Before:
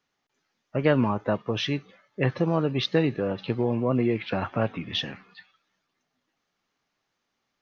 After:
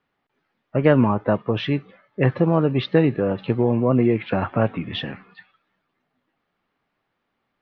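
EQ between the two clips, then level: distance through air 360 m; +6.5 dB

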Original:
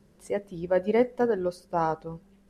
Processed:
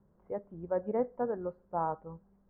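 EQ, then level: low-pass 1.2 kHz 24 dB/octave; bass shelf 120 Hz -4.5 dB; peaking EQ 340 Hz -7 dB 2 oct; -2.5 dB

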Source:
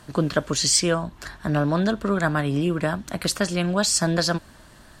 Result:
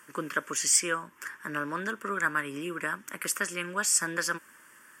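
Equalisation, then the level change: high-pass 520 Hz 12 dB/octave; treble shelf 11 kHz +6 dB; static phaser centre 1.7 kHz, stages 4; 0.0 dB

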